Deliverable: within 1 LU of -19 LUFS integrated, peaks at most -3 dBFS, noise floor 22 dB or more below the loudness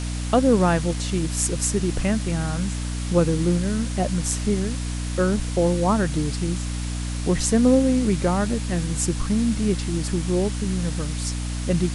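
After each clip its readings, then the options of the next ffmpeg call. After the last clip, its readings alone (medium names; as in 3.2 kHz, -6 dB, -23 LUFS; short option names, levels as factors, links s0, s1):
hum 60 Hz; highest harmonic 300 Hz; hum level -25 dBFS; noise floor -28 dBFS; noise floor target -45 dBFS; loudness -23.0 LUFS; peak level -6.0 dBFS; loudness target -19.0 LUFS
-> -af "bandreject=f=60:t=h:w=4,bandreject=f=120:t=h:w=4,bandreject=f=180:t=h:w=4,bandreject=f=240:t=h:w=4,bandreject=f=300:t=h:w=4"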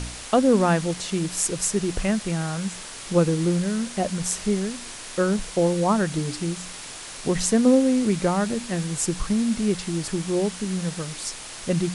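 hum not found; noise floor -38 dBFS; noise floor target -46 dBFS
-> -af "afftdn=nr=8:nf=-38"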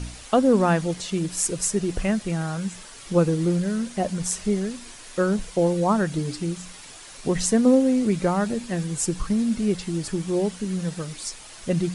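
noise floor -43 dBFS; noise floor target -46 dBFS
-> -af "afftdn=nr=6:nf=-43"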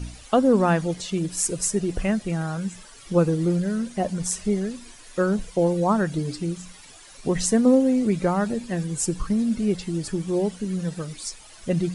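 noise floor -47 dBFS; loudness -24.0 LUFS; peak level -7.0 dBFS; loudness target -19.0 LUFS
-> -af "volume=1.78,alimiter=limit=0.708:level=0:latency=1"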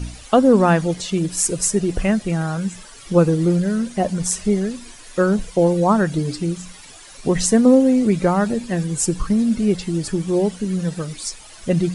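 loudness -19.0 LUFS; peak level -3.0 dBFS; noise floor -42 dBFS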